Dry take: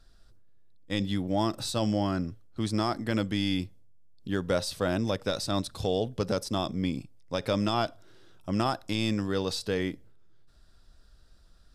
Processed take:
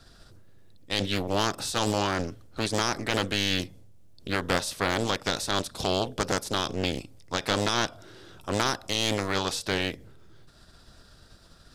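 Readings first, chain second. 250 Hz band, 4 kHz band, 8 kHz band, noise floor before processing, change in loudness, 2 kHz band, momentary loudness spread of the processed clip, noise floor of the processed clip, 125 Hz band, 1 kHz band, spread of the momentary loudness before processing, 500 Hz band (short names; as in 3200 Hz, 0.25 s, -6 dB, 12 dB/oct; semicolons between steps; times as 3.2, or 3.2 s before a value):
-2.5 dB, +6.5 dB, +9.0 dB, -57 dBFS, +2.0 dB, +8.0 dB, 7 LU, -55 dBFS, -1.0 dB, +4.0 dB, 7 LU, +0.5 dB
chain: spectral limiter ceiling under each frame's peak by 16 dB; Doppler distortion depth 0.55 ms; gain +2 dB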